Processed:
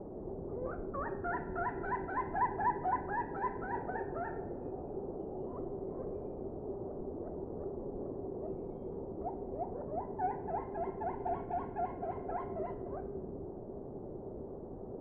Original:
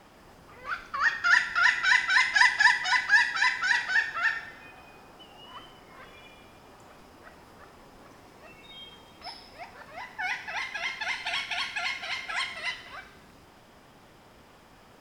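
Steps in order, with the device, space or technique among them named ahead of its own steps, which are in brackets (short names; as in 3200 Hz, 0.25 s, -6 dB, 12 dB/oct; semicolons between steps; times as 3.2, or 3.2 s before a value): under water (LPF 640 Hz 24 dB/oct; bell 390 Hz +10 dB 0.37 oct); gain +10 dB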